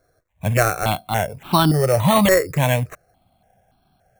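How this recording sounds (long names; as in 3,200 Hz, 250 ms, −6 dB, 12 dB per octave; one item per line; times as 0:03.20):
aliases and images of a low sample rate 4,900 Hz, jitter 0%
notches that jump at a steady rate 3.5 Hz 820–1,900 Hz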